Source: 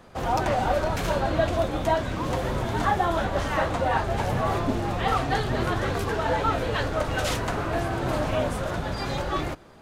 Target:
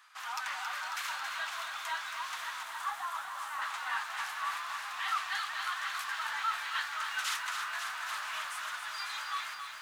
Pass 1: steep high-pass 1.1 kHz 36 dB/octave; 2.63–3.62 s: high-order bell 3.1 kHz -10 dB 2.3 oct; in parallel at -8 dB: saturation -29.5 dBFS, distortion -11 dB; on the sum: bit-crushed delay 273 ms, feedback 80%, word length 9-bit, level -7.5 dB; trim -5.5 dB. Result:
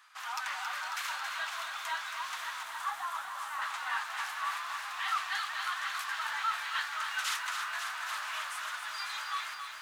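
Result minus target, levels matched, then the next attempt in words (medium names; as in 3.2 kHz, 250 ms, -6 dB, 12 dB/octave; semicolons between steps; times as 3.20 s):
saturation: distortion -4 dB
steep high-pass 1.1 kHz 36 dB/octave; 2.63–3.62 s: high-order bell 3.1 kHz -10 dB 2.3 oct; in parallel at -8 dB: saturation -35.5 dBFS, distortion -7 dB; on the sum: bit-crushed delay 273 ms, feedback 80%, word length 9-bit, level -7.5 dB; trim -5.5 dB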